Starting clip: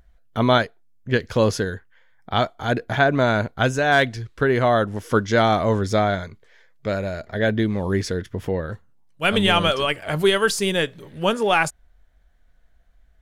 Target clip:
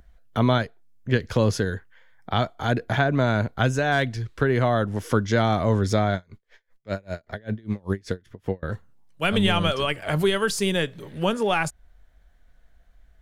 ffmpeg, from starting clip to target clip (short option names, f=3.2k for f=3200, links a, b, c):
-filter_complex "[0:a]acrossover=split=210[a][b];[b]acompressor=threshold=-27dB:ratio=2[c];[a][c]amix=inputs=2:normalize=0,asettb=1/sr,asplit=3[d][e][f];[d]atrim=end=6.154[g];[e]atrim=start=6.15:end=8.63,asetpts=PTS-STARTPTS,afade=t=in:d=0.004:c=qsin,afade=t=out:st=2.476:d=0.004:c=qsin,aeval=exprs='val(0)*pow(10,-32*(0.5-0.5*cos(2*PI*5.1*n/s))/20)':c=same[h];[f]atrim=start=8.626[i];[g][h]acrossfade=d=0.004:c1=hsin:c2=qsin[j];[j][i]acrossfade=d=0.004:c1=qsin:c2=hsin,volume=2dB"